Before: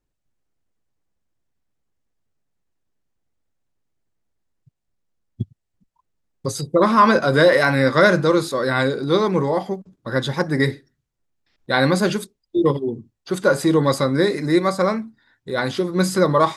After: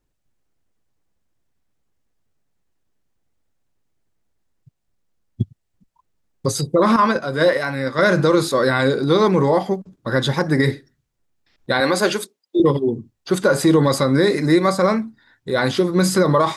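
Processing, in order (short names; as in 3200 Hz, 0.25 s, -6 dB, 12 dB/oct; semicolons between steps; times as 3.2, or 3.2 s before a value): 6.96–7.99 gate -12 dBFS, range -11 dB; 11.8–12.6 HPF 350 Hz 12 dB/oct; maximiser +10 dB; gain -5.5 dB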